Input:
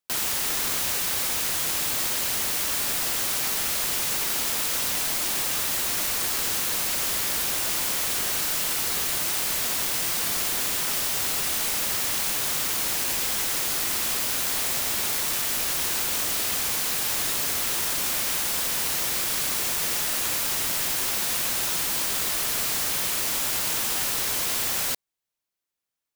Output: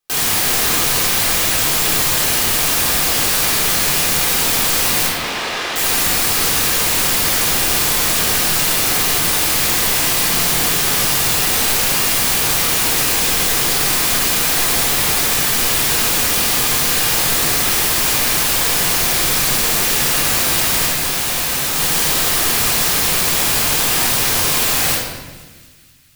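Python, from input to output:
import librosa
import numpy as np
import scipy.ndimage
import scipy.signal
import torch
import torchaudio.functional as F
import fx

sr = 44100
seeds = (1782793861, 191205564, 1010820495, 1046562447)

p1 = fx.bandpass_edges(x, sr, low_hz=330.0, high_hz=3600.0, at=(5.06, 5.76))
p2 = fx.clip_hard(p1, sr, threshold_db=-26.5, at=(20.86, 21.76))
p3 = p2 + fx.echo_wet_highpass(p2, sr, ms=238, feedback_pct=64, hz=1600.0, wet_db=-23.0, dry=0)
p4 = fx.room_shoebox(p3, sr, seeds[0], volume_m3=960.0, walls='mixed', distance_m=3.8)
y = F.gain(torch.from_numpy(p4), 4.0).numpy()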